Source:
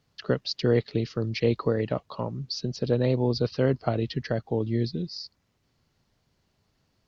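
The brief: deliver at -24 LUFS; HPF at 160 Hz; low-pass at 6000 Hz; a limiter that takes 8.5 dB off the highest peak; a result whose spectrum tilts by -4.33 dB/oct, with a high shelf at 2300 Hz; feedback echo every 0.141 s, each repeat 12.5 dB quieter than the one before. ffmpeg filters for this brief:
-af "highpass=160,lowpass=6k,highshelf=f=2.3k:g=5.5,alimiter=limit=-19dB:level=0:latency=1,aecho=1:1:141|282|423:0.237|0.0569|0.0137,volume=7dB"

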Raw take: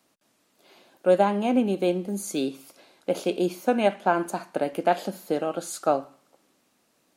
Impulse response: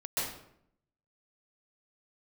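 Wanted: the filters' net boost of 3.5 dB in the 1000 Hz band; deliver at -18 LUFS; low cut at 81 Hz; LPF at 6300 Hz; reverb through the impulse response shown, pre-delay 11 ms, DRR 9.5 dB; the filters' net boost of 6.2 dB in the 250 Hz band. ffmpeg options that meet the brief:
-filter_complex "[0:a]highpass=81,lowpass=6.3k,equalizer=f=250:t=o:g=7.5,equalizer=f=1k:t=o:g=4.5,asplit=2[a][b];[1:a]atrim=start_sample=2205,adelay=11[c];[b][c]afir=irnorm=-1:irlink=0,volume=-15.5dB[d];[a][d]amix=inputs=2:normalize=0,volume=3.5dB"

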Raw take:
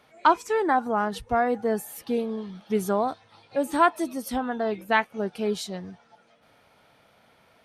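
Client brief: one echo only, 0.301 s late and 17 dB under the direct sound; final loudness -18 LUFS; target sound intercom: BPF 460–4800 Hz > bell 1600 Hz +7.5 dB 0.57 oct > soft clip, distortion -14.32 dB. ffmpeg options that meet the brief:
-af "highpass=460,lowpass=4.8k,equalizer=f=1.6k:t=o:w=0.57:g=7.5,aecho=1:1:301:0.141,asoftclip=threshold=-11dB,volume=9dB"

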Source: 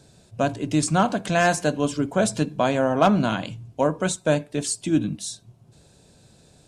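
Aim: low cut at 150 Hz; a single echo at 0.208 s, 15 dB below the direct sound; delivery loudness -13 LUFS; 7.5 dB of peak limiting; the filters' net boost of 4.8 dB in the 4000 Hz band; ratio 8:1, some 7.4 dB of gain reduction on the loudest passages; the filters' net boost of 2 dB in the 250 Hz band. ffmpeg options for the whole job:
-af "highpass=150,equalizer=f=250:t=o:g=3.5,equalizer=f=4k:t=o:g=6,acompressor=threshold=-20dB:ratio=8,alimiter=limit=-16.5dB:level=0:latency=1,aecho=1:1:208:0.178,volume=15dB"

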